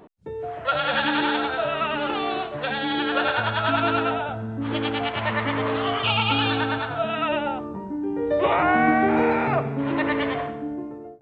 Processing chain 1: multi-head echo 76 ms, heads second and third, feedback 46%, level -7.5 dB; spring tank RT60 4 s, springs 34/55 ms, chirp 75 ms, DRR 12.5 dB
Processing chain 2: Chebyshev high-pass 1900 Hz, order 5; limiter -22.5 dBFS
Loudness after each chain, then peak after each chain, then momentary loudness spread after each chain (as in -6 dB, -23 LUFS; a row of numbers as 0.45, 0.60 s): -22.0, -32.5 LUFS; -6.0, -22.5 dBFS; 9, 11 LU